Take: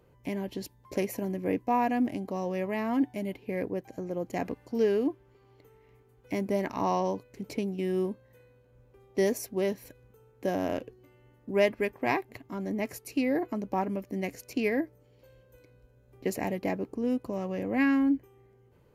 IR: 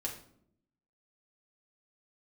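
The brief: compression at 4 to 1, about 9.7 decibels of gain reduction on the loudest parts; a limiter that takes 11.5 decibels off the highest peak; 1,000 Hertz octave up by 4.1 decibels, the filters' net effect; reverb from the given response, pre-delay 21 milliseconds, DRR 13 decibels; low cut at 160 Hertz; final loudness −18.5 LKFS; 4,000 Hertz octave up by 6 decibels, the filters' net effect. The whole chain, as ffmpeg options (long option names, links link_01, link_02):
-filter_complex "[0:a]highpass=160,equalizer=frequency=1000:width_type=o:gain=5,equalizer=frequency=4000:width_type=o:gain=8.5,acompressor=threshold=-30dB:ratio=4,alimiter=level_in=4dB:limit=-24dB:level=0:latency=1,volume=-4dB,asplit=2[link_01][link_02];[1:a]atrim=start_sample=2205,adelay=21[link_03];[link_02][link_03]afir=irnorm=-1:irlink=0,volume=-14dB[link_04];[link_01][link_04]amix=inputs=2:normalize=0,volume=20dB"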